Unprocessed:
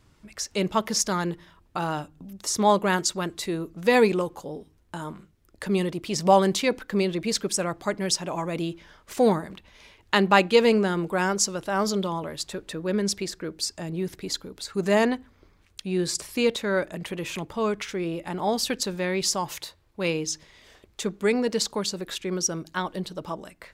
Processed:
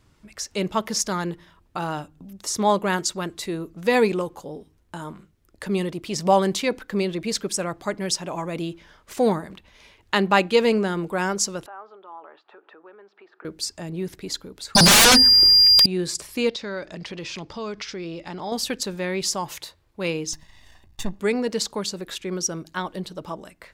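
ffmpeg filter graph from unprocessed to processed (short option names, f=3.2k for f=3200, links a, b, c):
-filter_complex "[0:a]asettb=1/sr,asplit=3[a][b][c];[a]atrim=end=11.664[d];[b]atrim=start=11.66:end=13.45,asetpts=PTS-STARTPTS,afade=t=in:d=0.004:c=qsin,afade=t=out:st=1.786:d=0.004:c=qsin,acompressor=threshold=-39dB:ratio=6:attack=3.2:release=140:knee=1:detection=peak,highpass=f=400:w=0.5412,highpass=f=400:w=1.3066,equalizer=f=530:t=q:w=4:g=-7,equalizer=f=820:t=q:w=4:g=7,equalizer=f=1.3k:t=q:w=4:g=7,equalizer=f=2.1k:t=q:w=4:g=-8,lowpass=f=2.4k:w=0.5412,lowpass=f=2.4k:w=1.3066[e];[c]atrim=start=13.446[f];[d][e]acrossfade=d=0.004:c1=hsin:c2=qsin[g];[g][f]acrossfade=d=0.004:c1=qsin:c2=hsin,asettb=1/sr,asplit=3[h][i][j];[h]atrim=end=14.754[k];[i]atrim=start=14.75:end=15.86,asetpts=PTS-STARTPTS,afade=t=in:d=0.004:c=qsin,afade=t=out:st=1.106:d=0.004:c=qsin,aeval=exprs='val(0)+0.0251*sin(2*PI*4800*n/s)':c=same,equalizer=f=1.8k:w=7:g=6.5,aeval=exprs='0.335*sin(PI/2*8.91*val(0)/0.335)':c=same[l];[j]atrim=start=15.856[m];[k][l]acrossfade=d=0.004:c1=hsin:c2=qsin[n];[n][m]acrossfade=d=0.004:c1=qsin:c2=hsin,asettb=1/sr,asplit=3[o][p][q];[o]atrim=end=16.494[r];[p]atrim=start=16.49:end=18.52,asetpts=PTS-STARTPTS,afade=t=in:d=0.004:c=qsin,afade=t=out:st=2.026:d=0.004:c=qsin,lowpass=f=5.1k:t=q:w=3.7,acompressor=threshold=-32dB:ratio=2:attack=3.2:release=140:knee=1:detection=peak[s];[q]atrim=start=18.516[t];[r][s]acrossfade=d=0.004:c1=hsin:c2=qsin[u];[u][t]acrossfade=d=0.004:c1=qsin:c2=hsin,asettb=1/sr,asplit=3[v][w][x];[v]atrim=end=20.334[y];[w]atrim=start=20.33:end=21.2,asetpts=PTS-STARTPTS,afade=t=in:d=0.004:c=qsin,afade=t=out:st=0.866:d=0.004:c=qsin,aeval=exprs='if(lt(val(0),0),0.251*val(0),val(0))':c=same,lowshelf=f=140:g=8,aecho=1:1:1.1:0.66,atrim=end_sample=38367[z];[x]atrim=start=21.196[aa];[y][z]acrossfade=d=0.004:c1=hsin:c2=qsin[ab];[ab][aa]acrossfade=d=0.004:c1=qsin:c2=hsin"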